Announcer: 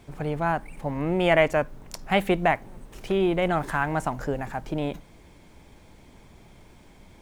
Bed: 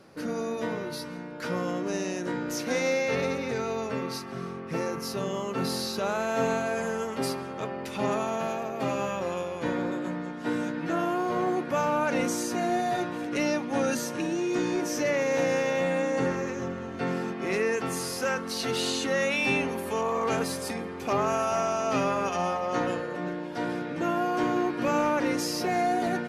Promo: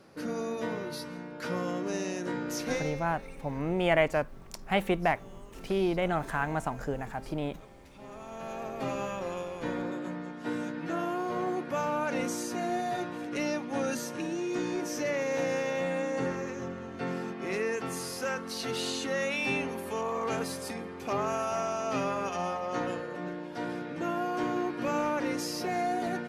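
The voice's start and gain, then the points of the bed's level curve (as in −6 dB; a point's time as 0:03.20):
2.60 s, −5.0 dB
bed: 0:02.72 −2.5 dB
0:03.07 −20.5 dB
0:08.04 −20.5 dB
0:08.64 −4.5 dB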